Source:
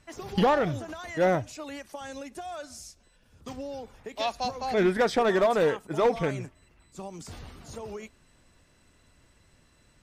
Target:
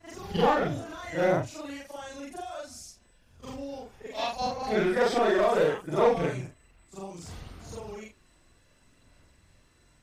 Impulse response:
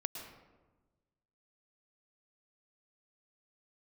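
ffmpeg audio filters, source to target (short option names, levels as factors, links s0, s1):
-af "afftfilt=real='re':imag='-im':win_size=4096:overlap=0.75,aphaser=in_gain=1:out_gain=1:delay=2.9:decay=0.22:speed=0.65:type=sinusoidal,volume=1.5"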